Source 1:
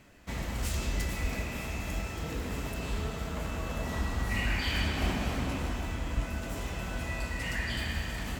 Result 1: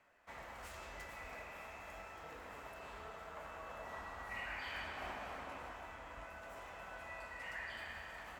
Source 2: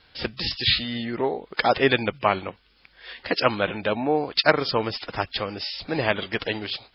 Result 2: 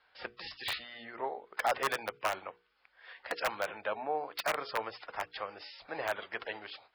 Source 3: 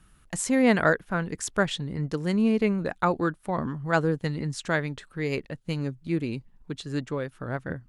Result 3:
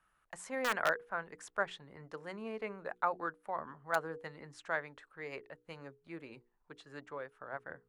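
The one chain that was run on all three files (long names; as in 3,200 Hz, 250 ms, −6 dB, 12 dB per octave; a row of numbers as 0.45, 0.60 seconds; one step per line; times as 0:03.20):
wrap-around overflow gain 10 dB
three-way crossover with the lows and the highs turned down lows −20 dB, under 540 Hz, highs −14 dB, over 2,000 Hz
mains-hum notches 60/120/180/240/300/360/420/480 Hz
level −5.5 dB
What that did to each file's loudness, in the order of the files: −14.0, −12.5, −12.0 LU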